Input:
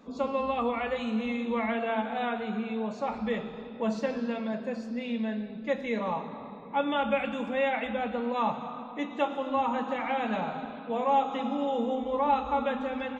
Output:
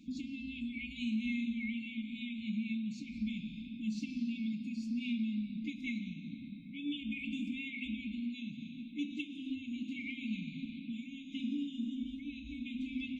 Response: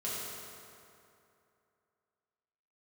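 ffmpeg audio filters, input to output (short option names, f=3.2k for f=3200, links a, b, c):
-af "acompressor=threshold=-32dB:ratio=3,afftfilt=real='re*(1-between(b*sr/4096,320,2100))':imag='im*(1-between(b*sr/4096,320,2100))':win_size=4096:overlap=0.75"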